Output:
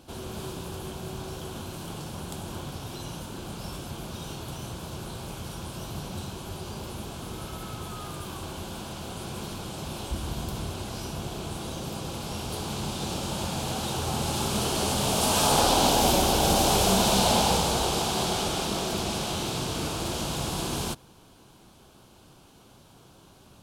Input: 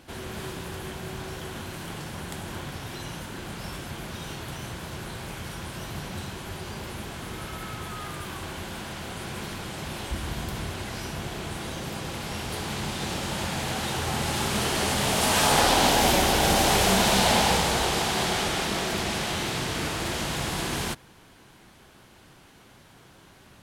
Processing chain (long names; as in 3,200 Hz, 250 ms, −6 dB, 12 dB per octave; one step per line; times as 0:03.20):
parametric band 1,900 Hz −14.5 dB 0.57 octaves